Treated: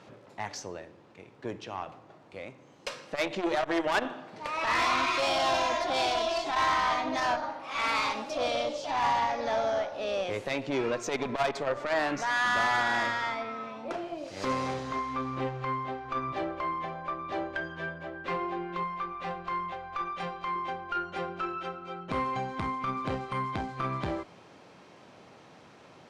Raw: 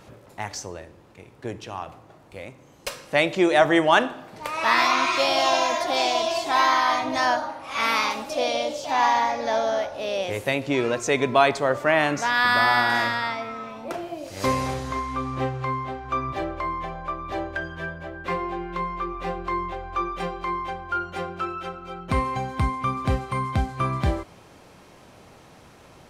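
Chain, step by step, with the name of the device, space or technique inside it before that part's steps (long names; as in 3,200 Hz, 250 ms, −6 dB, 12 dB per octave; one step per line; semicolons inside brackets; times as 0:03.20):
valve radio (band-pass filter 140–5,600 Hz; tube saturation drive 18 dB, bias 0.35; saturating transformer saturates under 380 Hz)
0:18.83–0:20.56: parametric band 350 Hz −9 dB 0.88 octaves
level −2 dB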